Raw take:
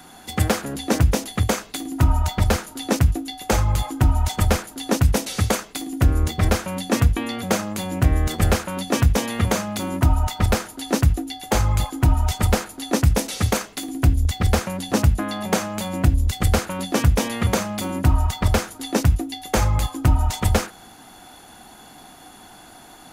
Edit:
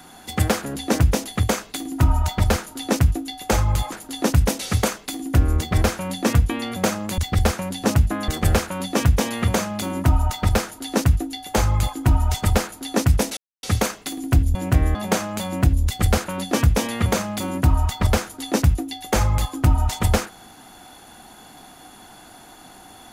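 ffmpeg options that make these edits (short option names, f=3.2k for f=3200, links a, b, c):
-filter_complex "[0:a]asplit=7[a][b][c][d][e][f][g];[a]atrim=end=3.922[h];[b]atrim=start=4.588:end=7.852[i];[c]atrim=start=14.258:end=15.362[j];[d]atrim=start=8.248:end=13.34,asetpts=PTS-STARTPTS,afade=t=out:st=5.088:d=0.004:c=hsin,apad=pad_dur=0.26[k];[e]atrim=start=13.34:end=14.262,asetpts=PTS-STARTPTS,afade=t=in:d=0.004:c=hsin[l];[f]atrim=start=7.848:end=8.252[m];[g]atrim=start=15.358[n];[h][i]acrossfade=d=0.004:c1=hsin:c2=hsin[o];[o][j]acrossfade=d=0.004:c1=hsin:c2=hsin[p];[k][l]concat=n=2:v=0:a=1[q];[p][q]acrossfade=d=0.004:c1=hsin:c2=hsin[r];[r][m]acrossfade=d=0.004:c1=hsin:c2=hsin[s];[s][n]acrossfade=d=0.004:c1=hsin:c2=hsin"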